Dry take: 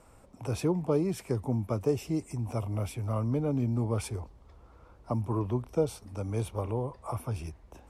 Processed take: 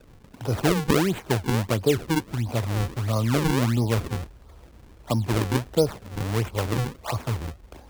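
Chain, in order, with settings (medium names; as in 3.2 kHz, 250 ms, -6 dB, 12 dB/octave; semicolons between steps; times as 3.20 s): decimation with a swept rate 40×, swing 160% 1.5 Hz; trim +6.5 dB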